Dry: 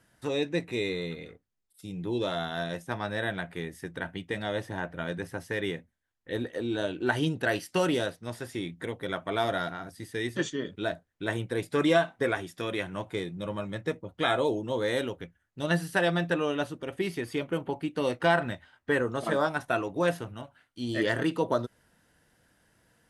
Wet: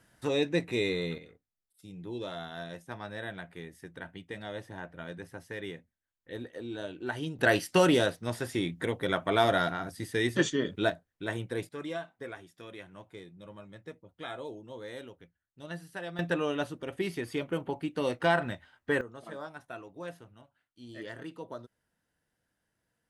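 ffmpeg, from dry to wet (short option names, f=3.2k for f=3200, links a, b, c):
-af "asetnsamples=n=441:p=0,asendcmd='1.18 volume volume -8dB;7.39 volume volume 3.5dB;10.9 volume volume -3.5dB;11.69 volume volume -14dB;16.19 volume volume -2dB;19.01 volume volume -15dB',volume=1dB"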